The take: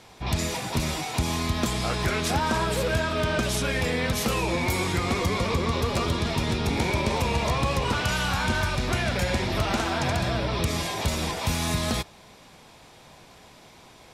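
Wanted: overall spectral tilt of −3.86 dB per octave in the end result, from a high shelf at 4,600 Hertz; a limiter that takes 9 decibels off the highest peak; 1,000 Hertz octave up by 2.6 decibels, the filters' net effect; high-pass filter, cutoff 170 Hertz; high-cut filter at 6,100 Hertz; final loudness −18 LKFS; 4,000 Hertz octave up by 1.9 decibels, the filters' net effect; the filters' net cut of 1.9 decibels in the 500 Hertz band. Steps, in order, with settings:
high-pass filter 170 Hz
low-pass filter 6,100 Hz
parametric band 500 Hz −3.5 dB
parametric band 1,000 Hz +4 dB
parametric band 4,000 Hz +5.5 dB
high-shelf EQ 4,600 Hz −5.5 dB
level +11 dB
brickwall limiter −9.5 dBFS

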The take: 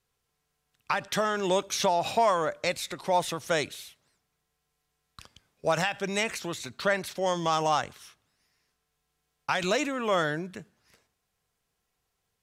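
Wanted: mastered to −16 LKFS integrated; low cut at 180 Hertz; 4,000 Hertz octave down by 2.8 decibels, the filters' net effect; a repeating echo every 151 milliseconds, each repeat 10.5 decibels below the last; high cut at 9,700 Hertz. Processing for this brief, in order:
high-pass filter 180 Hz
low-pass filter 9,700 Hz
parametric band 4,000 Hz −3.5 dB
repeating echo 151 ms, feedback 30%, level −10.5 dB
level +12.5 dB

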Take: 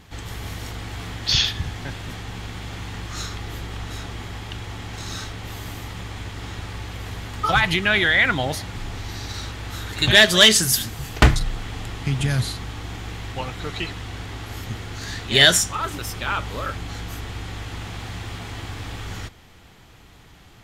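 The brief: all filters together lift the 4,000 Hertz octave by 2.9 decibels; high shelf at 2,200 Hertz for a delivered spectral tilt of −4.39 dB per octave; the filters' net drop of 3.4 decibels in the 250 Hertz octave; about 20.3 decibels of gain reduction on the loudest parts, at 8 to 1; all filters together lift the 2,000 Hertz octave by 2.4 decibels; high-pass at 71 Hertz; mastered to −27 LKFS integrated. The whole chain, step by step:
high-pass filter 71 Hz
parametric band 250 Hz −5 dB
parametric band 2,000 Hz +3.5 dB
high-shelf EQ 2,200 Hz −3.5 dB
parametric band 4,000 Hz +5.5 dB
downward compressor 8 to 1, threshold −27 dBFS
level +5 dB

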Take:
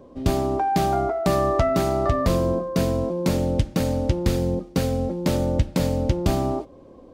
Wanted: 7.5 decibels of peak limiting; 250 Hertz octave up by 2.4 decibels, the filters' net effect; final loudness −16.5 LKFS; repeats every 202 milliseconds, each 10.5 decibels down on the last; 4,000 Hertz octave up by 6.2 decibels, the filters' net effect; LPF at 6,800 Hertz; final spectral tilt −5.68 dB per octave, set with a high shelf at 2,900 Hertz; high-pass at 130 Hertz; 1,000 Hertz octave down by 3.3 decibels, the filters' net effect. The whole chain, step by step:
high-pass filter 130 Hz
low-pass filter 6,800 Hz
parametric band 250 Hz +4 dB
parametric band 1,000 Hz −6 dB
high-shelf EQ 2,900 Hz +5 dB
parametric band 4,000 Hz +4.5 dB
brickwall limiter −13.5 dBFS
repeating echo 202 ms, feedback 30%, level −10.5 dB
level +7.5 dB

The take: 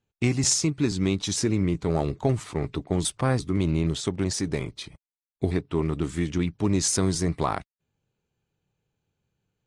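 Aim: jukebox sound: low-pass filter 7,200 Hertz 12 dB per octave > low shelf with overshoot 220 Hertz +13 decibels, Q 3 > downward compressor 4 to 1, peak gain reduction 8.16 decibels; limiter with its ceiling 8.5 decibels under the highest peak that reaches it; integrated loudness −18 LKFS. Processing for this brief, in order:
brickwall limiter −17.5 dBFS
low-pass filter 7,200 Hz 12 dB per octave
low shelf with overshoot 220 Hz +13 dB, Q 3
downward compressor 4 to 1, threshold −14 dBFS
level +1 dB

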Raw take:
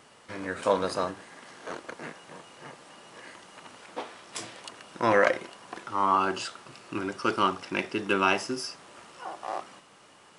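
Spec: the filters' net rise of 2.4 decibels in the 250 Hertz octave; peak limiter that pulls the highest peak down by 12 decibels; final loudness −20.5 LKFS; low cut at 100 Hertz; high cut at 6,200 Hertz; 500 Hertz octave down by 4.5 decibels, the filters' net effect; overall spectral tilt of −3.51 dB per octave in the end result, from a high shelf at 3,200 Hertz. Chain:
high-pass filter 100 Hz
low-pass filter 6,200 Hz
parametric band 250 Hz +6 dB
parametric band 500 Hz −7 dB
high-shelf EQ 3,200 Hz −6 dB
level +16.5 dB
brickwall limiter −6.5 dBFS

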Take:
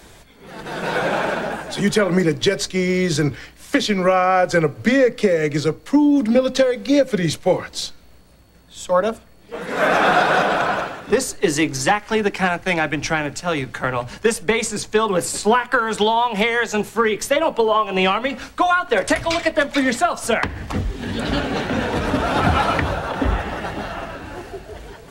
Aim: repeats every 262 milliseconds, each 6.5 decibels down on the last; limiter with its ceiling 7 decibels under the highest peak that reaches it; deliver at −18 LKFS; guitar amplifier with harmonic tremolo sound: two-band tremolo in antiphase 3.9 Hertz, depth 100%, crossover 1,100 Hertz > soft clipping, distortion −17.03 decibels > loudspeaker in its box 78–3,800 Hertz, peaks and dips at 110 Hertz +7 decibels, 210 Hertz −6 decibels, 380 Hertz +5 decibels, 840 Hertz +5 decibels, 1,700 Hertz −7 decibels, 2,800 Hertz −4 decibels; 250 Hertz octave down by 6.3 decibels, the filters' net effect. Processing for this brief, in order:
parametric band 250 Hz −8.5 dB
brickwall limiter −13 dBFS
repeating echo 262 ms, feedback 47%, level −6.5 dB
two-band tremolo in antiphase 3.9 Hz, depth 100%, crossover 1,100 Hz
soft clipping −19 dBFS
loudspeaker in its box 78–3,800 Hz, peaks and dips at 110 Hz +7 dB, 210 Hz −6 dB, 380 Hz +5 dB, 840 Hz +5 dB, 1,700 Hz −7 dB, 2,800 Hz −4 dB
level +11 dB

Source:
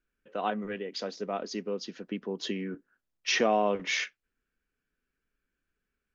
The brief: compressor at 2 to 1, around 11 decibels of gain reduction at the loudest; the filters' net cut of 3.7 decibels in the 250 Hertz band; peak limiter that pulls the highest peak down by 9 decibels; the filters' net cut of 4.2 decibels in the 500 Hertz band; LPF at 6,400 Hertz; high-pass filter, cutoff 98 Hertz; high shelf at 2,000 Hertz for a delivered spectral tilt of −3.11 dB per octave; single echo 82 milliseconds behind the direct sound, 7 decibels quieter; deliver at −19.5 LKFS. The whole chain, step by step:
high-pass filter 98 Hz
low-pass filter 6,400 Hz
parametric band 250 Hz −3.5 dB
parametric band 500 Hz −5 dB
high-shelf EQ 2,000 Hz +5 dB
downward compressor 2 to 1, threshold −42 dBFS
brickwall limiter −32 dBFS
single-tap delay 82 ms −7 dB
level +23 dB

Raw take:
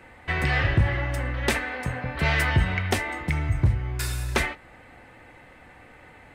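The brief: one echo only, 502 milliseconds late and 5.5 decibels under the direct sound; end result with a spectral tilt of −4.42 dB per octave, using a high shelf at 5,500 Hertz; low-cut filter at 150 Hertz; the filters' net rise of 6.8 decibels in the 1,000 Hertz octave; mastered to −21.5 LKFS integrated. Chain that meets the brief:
high-pass filter 150 Hz
parametric band 1,000 Hz +8.5 dB
high-shelf EQ 5,500 Hz +6.5 dB
single-tap delay 502 ms −5.5 dB
level +2.5 dB

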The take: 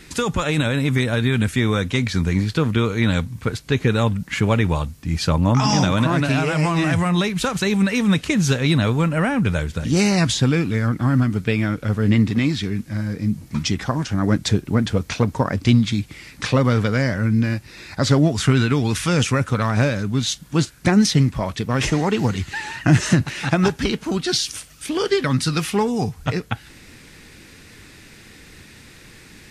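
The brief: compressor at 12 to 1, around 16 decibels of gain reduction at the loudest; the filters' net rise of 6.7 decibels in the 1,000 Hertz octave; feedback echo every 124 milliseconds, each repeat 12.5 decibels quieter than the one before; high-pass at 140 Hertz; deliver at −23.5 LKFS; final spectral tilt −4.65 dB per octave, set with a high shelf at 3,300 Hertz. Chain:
high-pass filter 140 Hz
parametric band 1,000 Hz +9 dB
high-shelf EQ 3,300 Hz −5 dB
downward compressor 12 to 1, threshold −27 dBFS
repeating echo 124 ms, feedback 24%, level −12.5 dB
level +8.5 dB

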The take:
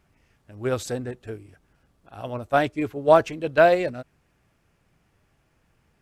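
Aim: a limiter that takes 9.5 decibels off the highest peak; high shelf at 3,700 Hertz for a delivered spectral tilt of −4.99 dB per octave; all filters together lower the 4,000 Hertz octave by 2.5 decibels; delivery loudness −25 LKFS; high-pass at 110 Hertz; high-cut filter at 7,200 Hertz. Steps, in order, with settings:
high-pass filter 110 Hz
low-pass filter 7,200 Hz
high-shelf EQ 3,700 Hz +3.5 dB
parametric band 4,000 Hz −5 dB
level +2 dB
brickwall limiter −10.5 dBFS

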